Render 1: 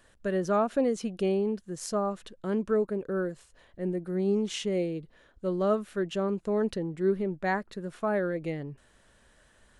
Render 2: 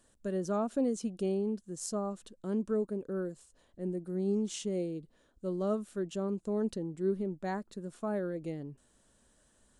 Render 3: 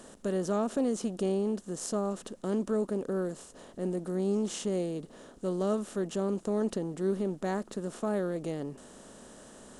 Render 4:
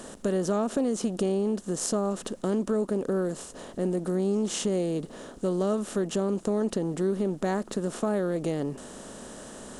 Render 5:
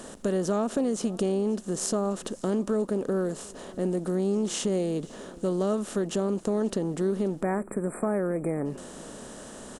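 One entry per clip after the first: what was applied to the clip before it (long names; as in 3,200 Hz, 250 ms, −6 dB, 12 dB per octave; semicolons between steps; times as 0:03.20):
octave-band graphic EQ 250/2,000/8,000 Hz +6/−7/+9 dB; level −7.5 dB
compressor on every frequency bin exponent 0.6
downward compressor 2.5 to 1, threshold −33 dBFS, peak gain reduction 6.5 dB; level +8 dB
single-tap delay 534 ms −22.5 dB; time-frequency box erased 0:07.42–0:08.65, 2,500–7,400 Hz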